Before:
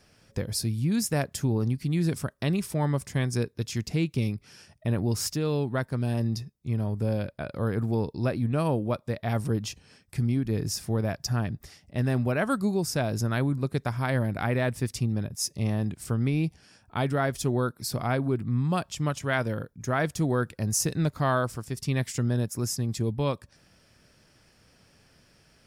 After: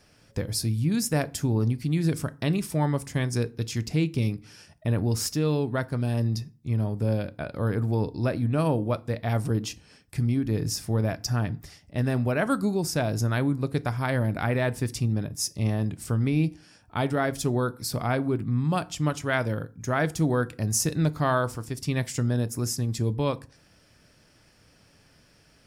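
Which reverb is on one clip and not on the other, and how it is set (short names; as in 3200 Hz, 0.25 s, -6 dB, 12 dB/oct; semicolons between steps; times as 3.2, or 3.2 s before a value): FDN reverb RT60 0.38 s, low-frequency decay 1.25×, high-frequency decay 0.7×, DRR 13.5 dB; gain +1 dB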